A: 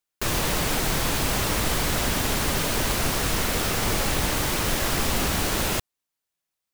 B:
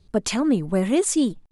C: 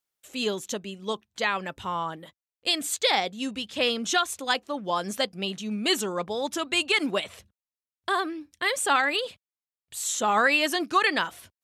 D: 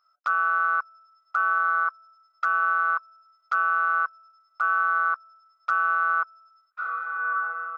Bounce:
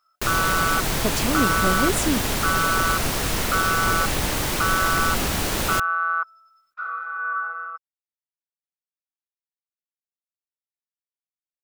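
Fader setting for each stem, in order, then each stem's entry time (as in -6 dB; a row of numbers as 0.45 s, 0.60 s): +0.5 dB, -3.5 dB, mute, 0.0 dB; 0.00 s, 0.90 s, mute, 0.00 s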